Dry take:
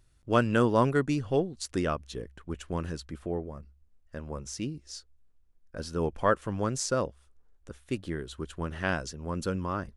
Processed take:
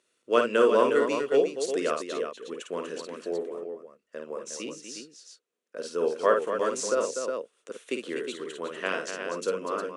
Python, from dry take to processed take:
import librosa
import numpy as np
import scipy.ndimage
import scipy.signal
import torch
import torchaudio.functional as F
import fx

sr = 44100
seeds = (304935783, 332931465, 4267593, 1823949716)

y = fx.cabinet(x, sr, low_hz=290.0, low_slope=24, high_hz=9900.0, hz=(310.0, 470.0, 810.0, 1600.0, 2700.0, 4900.0), db=(-6, 6, -10, -3, 3, -5))
y = fx.echo_multitap(y, sr, ms=(52, 244, 360), db=(-5.5, -8.5, -7.5))
y = fx.band_squash(y, sr, depth_pct=40, at=(6.59, 8.36))
y = F.gain(torch.from_numpy(y), 2.0).numpy()